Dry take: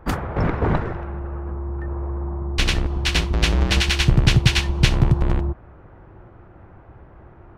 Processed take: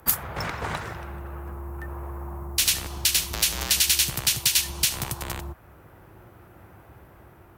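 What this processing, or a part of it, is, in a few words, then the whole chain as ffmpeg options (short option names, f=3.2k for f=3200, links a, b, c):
FM broadcast chain: -filter_complex "[0:a]highpass=62,dynaudnorm=f=570:g=5:m=4dB,acrossover=split=190|590[a][b][c];[a]acompressor=threshold=-29dB:ratio=4[d];[b]acompressor=threshold=-41dB:ratio=4[e];[c]acompressor=threshold=-22dB:ratio=4[f];[d][e][f]amix=inputs=3:normalize=0,aemphasis=mode=production:type=75fm,alimiter=limit=-12dB:level=0:latency=1:release=159,asoftclip=type=hard:threshold=-16dB,lowpass=f=15k:w=0.5412,lowpass=f=15k:w=1.3066,aemphasis=mode=production:type=75fm,volume=-3.5dB"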